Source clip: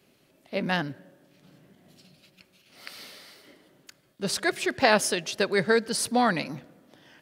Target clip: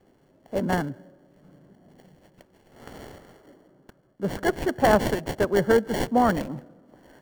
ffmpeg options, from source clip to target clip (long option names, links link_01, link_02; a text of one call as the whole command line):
ffmpeg -i in.wav -filter_complex "[0:a]asettb=1/sr,asplit=3[link_01][link_02][link_03];[link_01]atrim=end=3.184[link_04];[link_02]atrim=start=3.18:end=4.37,asetpts=PTS-STARTPTS,afade=type=in:duration=0.004:curve=qsin,afade=type=out:start_time=1.186:duration=0.004:curve=qsin,highshelf=frequency=4000:gain=-9.5[link_05];[link_03]atrim=start=4.366[link_06];[link_04][link_05]acrossfade=duration=0.004:curve1=hsin:curve2=qsin[link_07];[link_07][link_06]acrossfade=duration=0.004:curve1=qsin:curve2=hsin,acrossover=split=440|1500[link_08][link_09][link_10];[link_10]acrusher=samples=35:mix=1:aa=0.000001[link_11];[link_08][link_09][link_11]amix=inputs=3:normalize=0,volume=3dB" out.wav